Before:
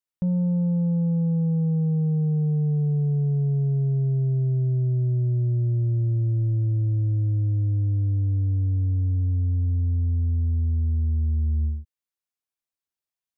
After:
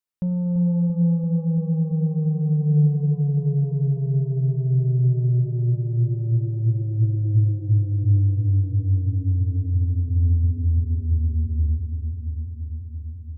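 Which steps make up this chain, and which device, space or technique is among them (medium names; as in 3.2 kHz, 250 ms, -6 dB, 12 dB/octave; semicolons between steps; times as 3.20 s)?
dub delay into a spring reverb (filtered feedback delay 339 ms, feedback 80%, low-pass 810 Hz, level -8 dB; spring tank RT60 2.4 s, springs 40/47 ms, chirp 45 ms, DRR 10 dB)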